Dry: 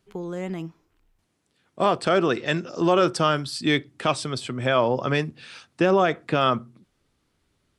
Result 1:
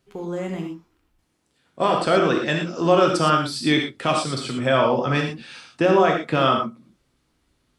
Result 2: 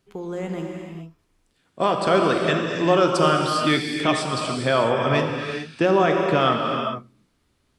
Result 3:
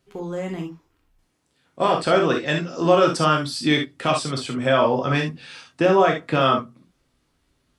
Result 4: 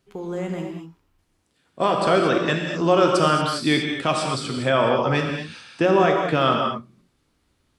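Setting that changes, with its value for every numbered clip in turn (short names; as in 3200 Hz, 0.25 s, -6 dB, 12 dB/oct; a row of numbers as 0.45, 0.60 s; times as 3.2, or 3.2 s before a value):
non-linear reverb, gate: 140, 470, 90, 260 ms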